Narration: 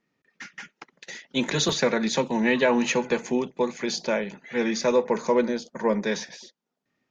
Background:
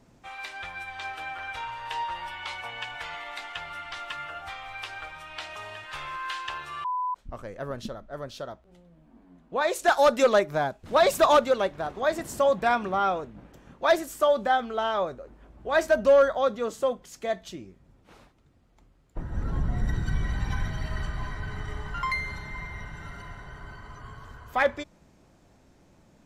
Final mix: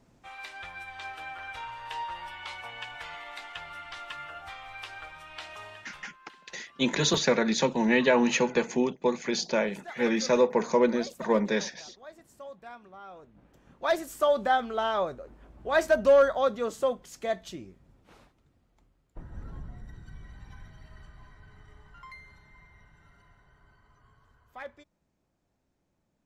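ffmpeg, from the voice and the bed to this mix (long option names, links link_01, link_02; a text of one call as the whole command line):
ffmpeg -i stem1.wav -i stem2.wav -filter_complex "[0:a]adelay=5450,volume=-1dB[link_01];[1:a]volume=17dB,afade=type=out:start_time=5.62:duration=0.51:silence=0.125893,afade=type=in:start_time=13.08:duration=1.35:silence=0.0891251,afade=type=out:start_time=17.66:duration=2.19:silence=0.133352[link_02];[link_01][link_02]amix=inputs=2:normalize=0" out.wav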